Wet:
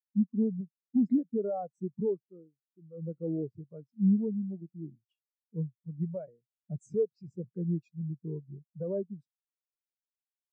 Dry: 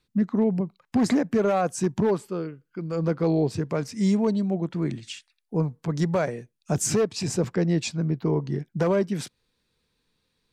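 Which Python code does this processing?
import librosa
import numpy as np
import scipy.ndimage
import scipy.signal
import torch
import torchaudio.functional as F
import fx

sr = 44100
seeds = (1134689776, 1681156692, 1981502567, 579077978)

y = fx.spectral_expand(x, sr, expansion=2.5)
y = y * 10.0 ** (-4.0 / 20.0)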